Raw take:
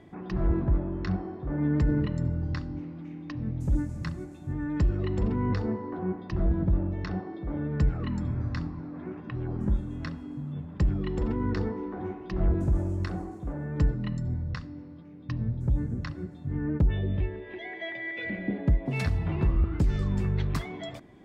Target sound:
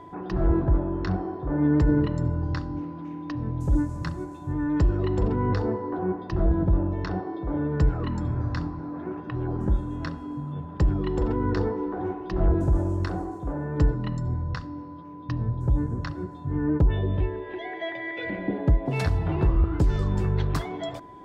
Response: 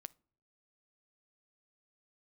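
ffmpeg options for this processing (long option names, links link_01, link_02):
-filter_complex "[0:a]asplit=2[link_01][link_02];[link_02]highpass=frequency=280:width=0.5412,highpass=frequency=280:width=1.3066,equalizer=frequency=370:width_type=q:width=4:gain=-7,equalizer=frequency=580:width_type=q:width=4:gain=-7,equalizer=frequency=1200:width_type=q:width=4:gain=-9,lowpass=frequency=2100:width=0.5412,lowpass=frequency=2100:width=1.3066[link_03];[1:a]atrim=start_sample=2205,lowshelf=frequency=330:gain=10[link_04];[link_03][link_04]afir=irnorm=-1:irlink=0,volume=2.5dB[link_05];[link_01][link_05]amix=inputs=2:normalize=0,aeval=exprs='val(0)+0.00398*sin(2*PI*1000*n/s)':channel_layout=same,volume=3dB"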